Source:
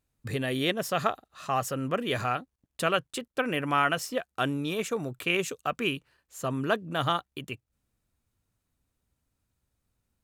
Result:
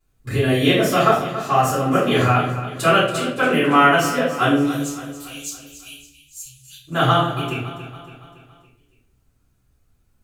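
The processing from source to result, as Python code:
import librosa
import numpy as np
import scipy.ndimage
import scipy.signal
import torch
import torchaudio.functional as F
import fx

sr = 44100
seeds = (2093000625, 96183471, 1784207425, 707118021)

p1 = fx.cheby2_bandstop(x, sr, low_hz=240.0, high_hz=1200.0, order=4, stop_db=70, at=(4.64, 6.87), fade=0.02)
p2 = p1 + fx.echo_feedback(p1, sr, ms=281, feedback_pct=51, wet_db=-13, dry=0)
p3 = fx.room_shoebox(p2, sr, seeds[0], volume_m3=89.0, walls='mixed', distance_m=3.9)
y = p3 * 10.0 ** (-3.5 / 20.0)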